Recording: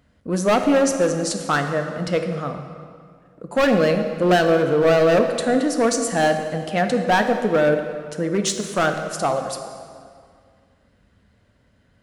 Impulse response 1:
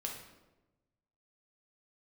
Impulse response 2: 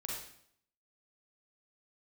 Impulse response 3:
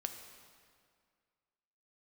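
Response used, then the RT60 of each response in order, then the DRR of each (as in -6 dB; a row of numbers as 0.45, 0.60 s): 3; 1.1, 0.65, 2.1 s; 0.0, -3.5, 5.5 dB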